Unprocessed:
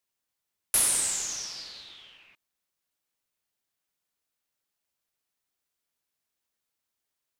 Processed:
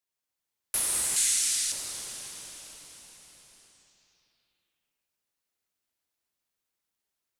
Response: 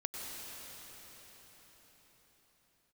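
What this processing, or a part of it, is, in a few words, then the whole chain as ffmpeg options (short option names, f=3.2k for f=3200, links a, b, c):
cathedral: -filter_complex "[1:a]atrim=start_sample=2205[a];[0:a][a]afir=irnorm=-1:irlink=0,asettb=1/sr,asplit=3[b][c][d];[b]atrim=end=1.164[e];[c]atrim=start=1.16:end=1.72,asetpts=PTS-STARTPTS,afade=t=in:d=0.004:c=qsin,afade=t=out:st=0.556:d=0.004:c=qsin,equalizer=f=125:t=o:w=1:g=-12,equalizer=f=500:t=o:w=1:g=-11,equalizer=f=1k:t=o:w=1:g=-9,equalizer=f=2k:t=o:w=1:g=6,equalizer=f=4k:t=o:w=1:g=6,equalizer=f=8k:t=o:w=1:g=5[f];[d]atrim=start=1.716[g];[e][f]acrossfade=d=0.004:c1=hsin:c2=qsin[h];[h][g]acrossfade=d=0.004:c1=qsin:c2=hsin,volume=-2.5dB"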